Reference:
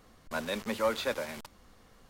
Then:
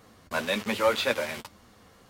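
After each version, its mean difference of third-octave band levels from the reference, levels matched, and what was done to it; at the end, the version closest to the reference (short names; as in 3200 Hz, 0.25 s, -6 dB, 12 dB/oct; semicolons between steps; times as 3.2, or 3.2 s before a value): 1.0 dB: HPF 58 Hz; dynamic EQ 2700 Hz, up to +5 dB, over -49 dBFS, Q 1.3; flange 1.8 Hz, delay 8.5 ms, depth 3.2 ms, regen -30%; gain +8.5 dB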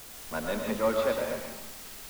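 7.0 dB: high shelf 2200 Hz -12 dB; in parallel at -10.5 dB: requantised 6-bit, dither triangular; on the sum: digital reverb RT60 0.82 s, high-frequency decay 0.8×, pre-delay 75 ms, DRR 1.5 dB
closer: first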